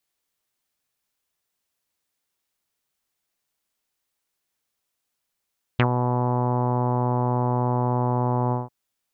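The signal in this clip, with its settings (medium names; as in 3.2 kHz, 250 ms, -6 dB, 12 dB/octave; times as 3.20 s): synth note saw B2 24 dB/octave, low-pass 940 Hz, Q 3.7, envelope 2 oct, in 0.06 s, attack 4.5 ms, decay 0.08 s, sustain -7 dB, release 0.17 s, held 2.73 s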